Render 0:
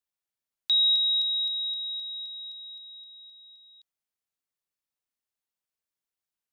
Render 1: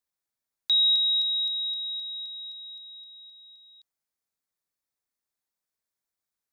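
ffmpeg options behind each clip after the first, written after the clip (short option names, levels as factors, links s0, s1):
-af "equalizer=f=2900:t=o:w=0.33:g=-8.5,volume=1.26"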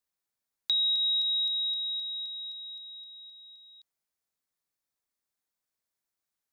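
-af "acompressor=threshold=0.0562:ratio=6"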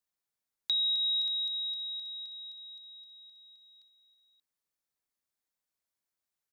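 -af "aecho=1:1:581:0.211,volume=0.75"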